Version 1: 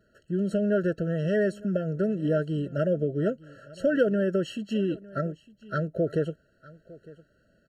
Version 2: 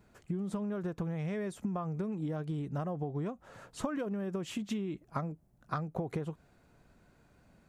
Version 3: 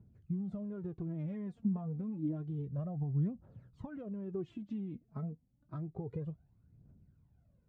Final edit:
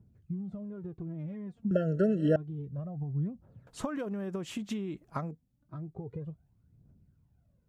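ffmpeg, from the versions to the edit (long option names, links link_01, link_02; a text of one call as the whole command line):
ffmpeg -i take0.wav -i take1.wav -i take2.wav -filter_complex "[2:a]asplit=3[link_01][link_02][link_03];[link_01]atrim=end=1.712[link_04];[0:a]atrim=start=1.708:end=2.362[link_05];[link_02]atrim=start=2.358:end=3.672[link_06];[1:a]atrim=start=3.668:end=5.312[link_07];[link_03]atrim=start=5.308[link_08];[link_04][link_05]acrossfade=duration=0.004:curve1=hsin:curve2=hsin[link_09];[link_09][link_06]acrossfade=duration=0.004:curve1=hsin:curve2=hsin[link_10];[link_10][link_07]acrossfade=duration=0.004:curve1=hsin:curve2=hsin[link_11];[link_11][link_08]acrossfade=duration=0.004:curve1=hsin:curve2=hsin" out.wav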